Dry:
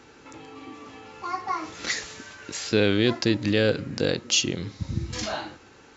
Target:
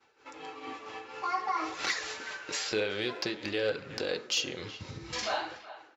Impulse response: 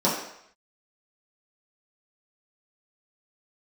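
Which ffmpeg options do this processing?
-filter_complex "[0:a]tremolo=f=4.3:d=0.37,acompressor=threshold=0.02:ratio=2.5,agate=range=0.0224:threshold=0.00794:ratio=3:detection=peak,equalizer=f=270:w=3.8:g=-6.5,asplit=2[s0][s1];[s1]adelay=370,highpass=300,lowpass=3400,asoftclip=type=hard:threshold=0.0531,volume=0.178[s2];[s0][s2]amix=inputs=2:normalize=0,asplit=2[s3][s4];[1:a]atrim=start_sample=2205,asetrate=61740,aresample=44100[s5];[s4][s5]afir=irnorm=-1:irlink=0,volume=0.075[s6];[s3][s6]amix=inputs=2:normalize=0,flanger=delay=0.7:depth=8.8:regen=-47:speed=0.53:shape=triangular,asplit=2[s7][s8];[s8]highpass=f=720:p=1,volume=5.62,asoftclip=type=tanh:threshold=0.224[s9];[s7][s9]amix=inputs=2:normalize=0,lowpass=f=4500:p=1,volume=0.501"

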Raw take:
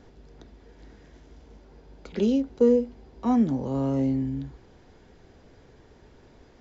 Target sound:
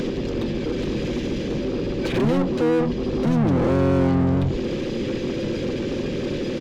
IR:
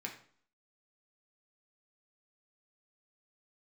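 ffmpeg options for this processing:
-filter_complex "[0:a]afftfilt=real='re*(1-between(b*sr/4096,620,2300))':imag='im*(1-between(b*sr/4096,620,2300))':win_size=4096:overlap=0.75,equalizer=f=740:w=3.8:g=-10.5,aecho=1:1:5.7:0.5,adynamicequalizer=threshold=0.00316:dfrequency=1600:dqfactor=1.3:tfrequency=1600:tqfactor=1.3:attack=5:release=100:ratio=0.375:range=1.5:mode=cutabove:tftype=bell,asplit=2[s0][s1];[s1]acompressor=threshold=0.02:ratio=10,volume=1.06[s2];[s0][s2]amix=inputs=2:normalize=0,alimiter=limit=0.0841:level=0:latency=1:release=120,acompressor=mode=upward:threshold=0.00794:ratio=2.5,asplit=2[s3][s4];[s4]highpass=f=720:p=1,volume=50.1,asoftclip=type=tanh:threshold=0.0841[s5];[s3][s5]amix=inputs=2:normalize=0,lowpass=f=1200:p=1,volume=0.501,aeval=exprs='val(0)+0.00112*(sin(2*PI*50*n/s)+sin(2*PI*2*50*n/s)/2+sin(2*PI*3*50*n/s)/3+sin(2*PI*4*50*n/s)/4+sin(2*PI*5*50*n/s)/5)':c=same,asplit=3[s6][s7][s8];[s7]asetrate=22050,aresample=44100,atempo=2,volume=0.2[s9];[s8]asetrate=29433,aresample=44100,atempo=1.49831,volume=0.891[s10];[s6][s9][s10]amix=inputs=3:normalize=0,volume=1.78"

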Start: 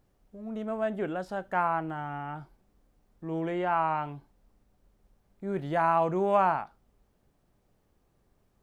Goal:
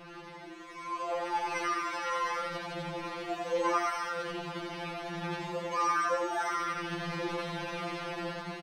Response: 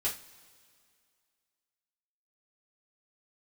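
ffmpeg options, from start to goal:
-filter_complex "[0:a]aeval=exprs='val(0)+0.5*0.0376*sgn(val(0))':c=same,acompressor=threshold=0.0224:ratio=2.5,asplit=2[s0][s1];[s1]asplit=7[s2][s3][s4][s5][s6][s7][s8];[s2]adelay=95,afreqshift=58,volume=0.631[s9];[s3]adelay=190,afreqshift=116,volume=0.327[s10];[s4]adelay=285,afreqshift=174,volume=0.17[s11];[s5]adelay=380,afreqshift=232,volume=0.0891[s12];[s6]adelay=475,afreqshift=290,volume=0.0462[s13];[s7]adelay=570,afreqshift=348,volume=0.024[s14];[s8]adelay=665,afreqshift=406,volume=0.0124[s15];[s9][s10][s11][s12][s13][s14][s15]amix=inputs=7:normalize=0[s16];[s0][s16]amix=inputs=2:normalize=0,dynaudnorm=f=240:g=9:m=3.16,highpass=120,flanger=delay=3.5:depth=8.3:regen=-42:speed=0.62:shape=sinusoidal,acrusher=samples=9:mix=1:aa=0.000001,lowpass=2900,asetrate=64194,aresample=44100,atempo=0.686977,asplit=2[s17][s18];[s18]aecho=0:1:89:0.631[s19];[s17][s19]amix=inputs=2:normalize=0,afftfilt=real='re*2.83*eq(mod(b,8),0)':imag='im*2.83*eq(mod(b,8),0)':win_size=2048:overlap=0.75,volume=0.562"

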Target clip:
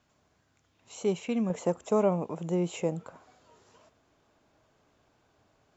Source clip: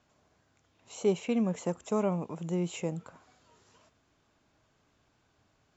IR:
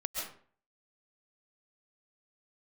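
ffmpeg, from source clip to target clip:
-af "asetnsamples=n=441:p=0,asendcmd='1.5 equalizer g 6',equalizer=f=570:t=o:w=1.8:g=-2"

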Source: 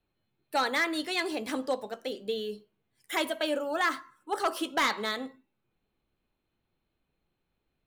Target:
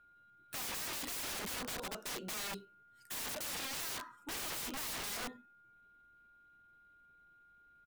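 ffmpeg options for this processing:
-af "aeval=exprs='val(0)+0.000708*sin(2*PI*1500*n/s)':c=same,asetrate=41625,aresample=44100,atempo=1.05946,aeval=exprs='(mod(70.8*val(0)+1,2)-1)/70.8':c=same,volume=1.12"

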